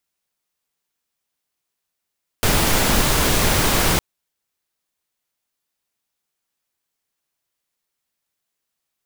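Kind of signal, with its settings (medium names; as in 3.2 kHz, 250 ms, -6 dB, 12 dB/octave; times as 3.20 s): noise pink, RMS -17 dBFS 1.56 s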